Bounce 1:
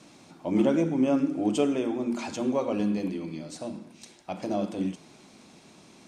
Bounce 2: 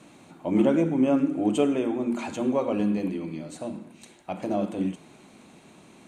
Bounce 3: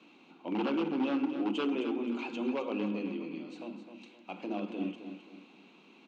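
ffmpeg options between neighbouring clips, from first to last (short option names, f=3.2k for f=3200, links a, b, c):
-af "equalizer=f=5.2k:t=o:w=0.45:g=-13.5,bandreject=f=3.4k:w=26,volume=2dB"
-filter_complex "[0:a]aeval=exprs='0.133*(abs(mod(val(0)/0.133+3,4)-2)-1)':c=same,highpass=f=220:w=0.5412,highpass=f=220:w=1.3066,equalizer=f=620:t=q:w=4:g=-9,equalizer=f=1.8k:t=q:w=4:g=-8,equalizer=f=2.7k:t=q:w=4:g=9,lowpass=f=4.8k:w=0.5412,lowpass=f=4.8k:w=1.3066,asplit=2[a][b];[b]aecho=0:1:261|522|783|1044:0.335|0.124|0.0459|0.017[c];[a][c]amix=inputs=2:normalize=0,volume=-6dB"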